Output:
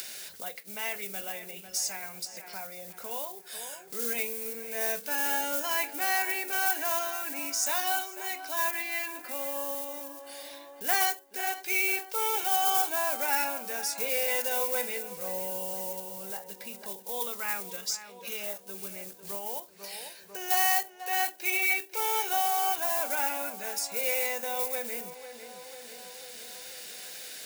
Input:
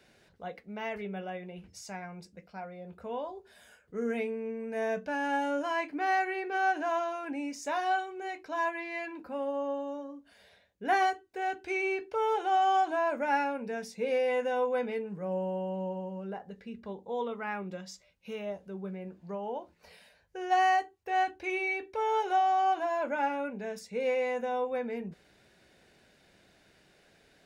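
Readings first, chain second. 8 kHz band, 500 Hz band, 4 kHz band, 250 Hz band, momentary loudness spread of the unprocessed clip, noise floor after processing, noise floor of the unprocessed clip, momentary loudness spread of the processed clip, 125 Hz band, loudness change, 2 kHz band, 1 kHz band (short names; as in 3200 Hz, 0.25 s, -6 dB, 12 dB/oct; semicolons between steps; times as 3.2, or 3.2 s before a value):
+20.5 dB, -4.5 dB, +10.0 dB, -8.5 dB, 16 LU, -50 dBFS, -64 dBFS, 15 LU, under -10 dB, +2.5 dB, +3.0 dB, -3.0 dB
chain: block floating point 5-bit; high shelf 2200 Hz +9.5 dB; tape echo 0.496 s, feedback 54%, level -13 dB, low-pass 2400 Hz; in parallel at -3 dB: limiter -20 dBFS, peak gain reduction 7 dB; on the sum: upward compressor, threshold -29 dBFS; RIAA curve recording; gain -7.5 dB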